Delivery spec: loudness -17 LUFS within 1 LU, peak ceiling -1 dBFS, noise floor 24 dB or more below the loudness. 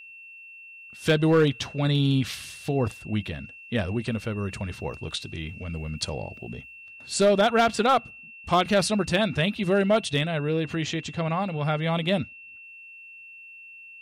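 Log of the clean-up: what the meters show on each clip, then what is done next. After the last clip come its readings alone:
clipped 0.4%; flat tops at -13.5 dBFS; steady tone 2700 Hz; tone level -43 dBFS; loudness -25.5 LUFS; peak -13.5 dBFS; loudness target -17.0 LUFS
-> clip repair -13.5 dBFS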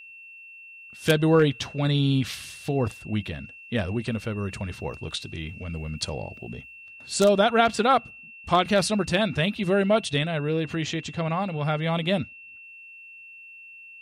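clipped 0.0%; steady tone 2700 Hz; tone level -43 dBFS
-> notch 2700 Hz, Q 30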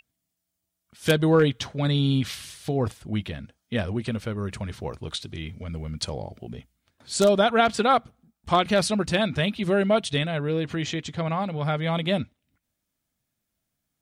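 steady tone none; loudness -25.0 LUFS; peak -4.5 dBFS; loudness target -17.0 LUFS
-> gain +8 dB; limiter -1 dBFS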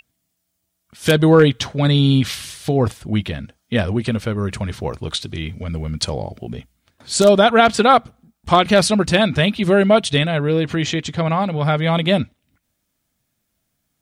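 loudness -17.5 LUFS; peak -1.0 dBFS; noise floor -73 dBFS

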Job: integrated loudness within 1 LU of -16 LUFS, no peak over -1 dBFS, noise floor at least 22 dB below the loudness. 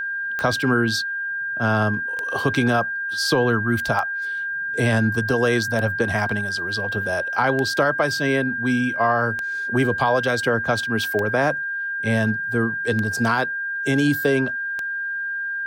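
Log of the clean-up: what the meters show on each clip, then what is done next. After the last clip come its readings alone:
clicks 9; steady tone 1600 Hz; tone level -24 dBFS; loudness -21.5 LUFS; peak -6.0 dBFS; loudness target -16.0 LUFS
-> de-click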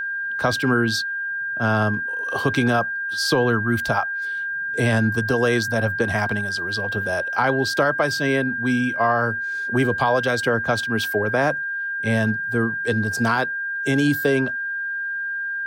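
clicks 0; steady tone 1600 Hz; tone level -24 dBFS
-> notch 1600 Hz, Q 30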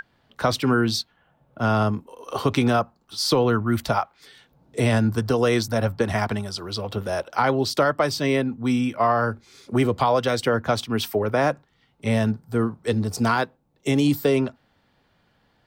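steady tone none; loudness -23.0 LUFS; peak -7.0 dBFS; loudness target -16.0 LUFS
-> gain +7 dB; limiter -1 dBFS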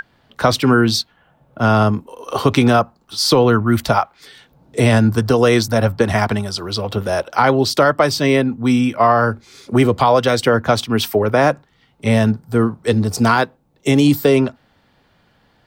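loudness -16.0 LUFS; peak -1.0 dBFS; noise floor -58 dBFS

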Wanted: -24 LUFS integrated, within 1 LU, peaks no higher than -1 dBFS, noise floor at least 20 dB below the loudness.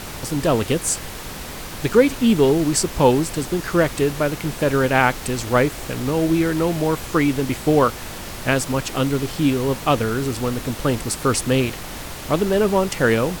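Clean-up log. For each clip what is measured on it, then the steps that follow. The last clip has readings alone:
noise floor -33 dBFS; noise floor target -40 dBFS; loudness -20.0 LUFS; peak -1.5 dBFS; loudness target -24.0 LUFS
-> noise print and reduce 7 dB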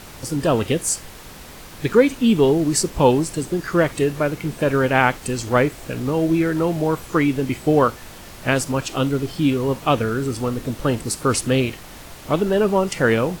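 noise floor -40 dBFS; loudness -20.0 LUFS; peak -1.5 dBFS; loudness target -24.0 LUFS
-> gain -4 dB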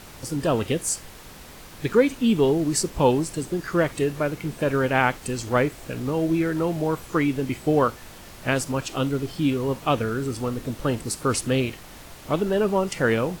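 loudness -24.0 LUFS; peak -5.5 dBFS; noise floor -44 dBFS

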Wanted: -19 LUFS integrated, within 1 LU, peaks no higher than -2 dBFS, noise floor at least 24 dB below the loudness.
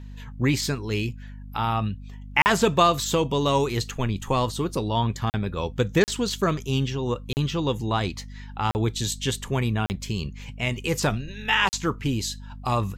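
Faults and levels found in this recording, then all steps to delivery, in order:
dropouts 7; longest dropout 39 ms; hum 50 Hz; harmonics up to 250 Hz; hum level -37 dBFS; loudness -25.0 LUFS; peak -4.0 dBFS; loudness target -19.0 LUFS
-> interpolate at 2.42/5.3/6.04/7.33/8.71/9.86/11.69, 39 ms; de-hum 50 Hz, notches 5; gain +6 dB; limiter -2 dBFS

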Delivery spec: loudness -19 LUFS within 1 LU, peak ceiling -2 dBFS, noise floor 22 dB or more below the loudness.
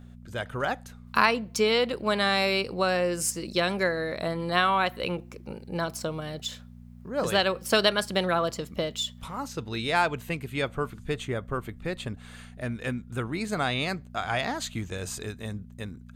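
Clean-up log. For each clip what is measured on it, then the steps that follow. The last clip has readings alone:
hum 60 Hz; harmonics up to 240 Hz; hum level -44 dBFS; loudness -28.0 LUFS; peak -7.0 dBFS; loudness target -19.0 LUFS
-> de-hum 60 Hz, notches 4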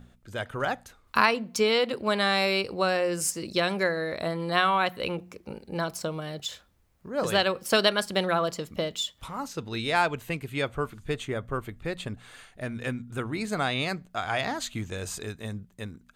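hum none; loudness -28.0 LUFS; peak -7.0 dBFS; loudness target -19.0 LUFS
-> gain +9 dB; limiter -2 dBFS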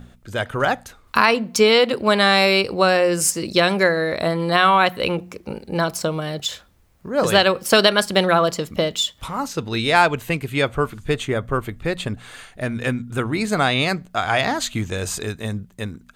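loudness -19.5 LUFS; peak -2.0 dBFS; noise floor -53 dBFS

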